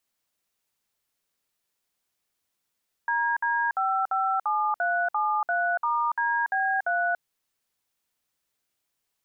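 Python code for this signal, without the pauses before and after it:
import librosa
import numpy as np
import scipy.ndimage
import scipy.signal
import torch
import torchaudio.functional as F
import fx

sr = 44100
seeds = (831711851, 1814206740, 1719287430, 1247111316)

y = fx.dtmf(sr, digits='DD557373*DB3', tone_ms=286, gap_ms=58, level_db=-25.0)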